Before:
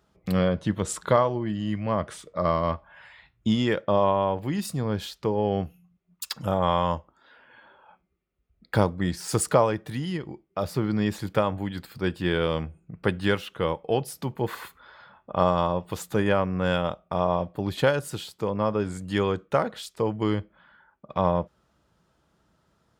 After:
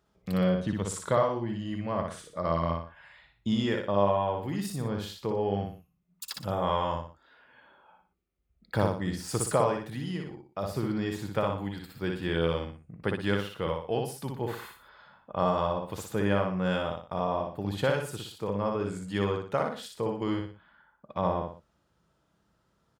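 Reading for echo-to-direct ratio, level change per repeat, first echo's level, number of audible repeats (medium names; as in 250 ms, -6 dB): -3.0 dB, -8.5 dB, -3.5 dB, 3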